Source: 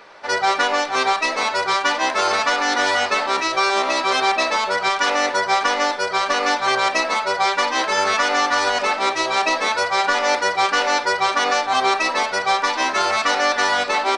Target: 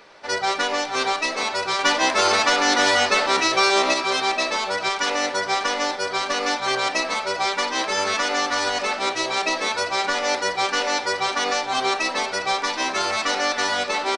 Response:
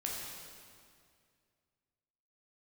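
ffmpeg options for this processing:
-filter_complex "[0:a]asettb=1/sr,asplit=3[link_01][link_02][link_03];[link_01]atrim=end=1.794[link_04];[link_02]atrim=start=1.79:end=3.94,asetpts=PTS-STARTPTS,afade=type=in:duration=0.004:curve=qsin,afade=type=out:start_time=2.146:duration=0.004:curve=qsin,acontrast=22[link_05];[link_03]atrim=start=3.936[link_06];[link_04][link_05]acrossfade=duration=0.004:curve1=hsin:curve2=qsin[link_07];[link_07][link_06]acrossfade=duration=0.004:curve1=qsin:curve2=hsin,equalizer=frequency=1100:width=0.55:gain=-6,asplit=2[link_08][link_09];[link_09]adelay=402.3,volume=-14dB,highshelf=frequency=4000:gain=-9.05[link_10];[link_08][link_10]amix=inputs=2:normalize=0"

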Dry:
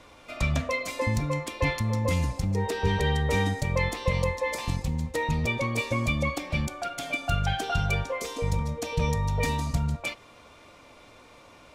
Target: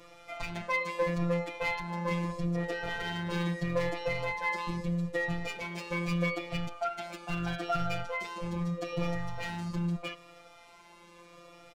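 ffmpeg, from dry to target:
ffmpeg -i in.wav -filter_complex "[0:a]acrossover=split=3900[link_01][link_02];[link_02]acompressor=threshold=-55dB:ratio=4:attack=1:release=60[link_03];[link_01][link_03]amix=inputs=2:normalize=0,asoftclip=type=hard:threshold=-24.5dB,afftfilt=real='hypot(re,im)*cos(PI*b)':imag='0':win_size=1024:overlap=0.75,asplit=2[link_04][link_05];[link_05]adelay=3.7,afreqshift=-0.78[link_06];[link_04][link_06]amix=inputs=2:normalize=1,volume=4dB" out.wav

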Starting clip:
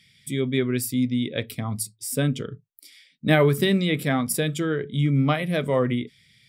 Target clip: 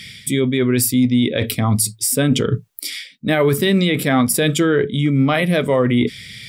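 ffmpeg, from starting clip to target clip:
ffmpeg -i in.wav -af "areverse,acompressor=threshold=-33dB:ratio=10,areverse,equalizer=frequency=150:width=5:gain=-6,alimiter=level_in=28.5dB:limit=-1dB:release=50:level=0:latency=1,volume=-6dB" out.wav

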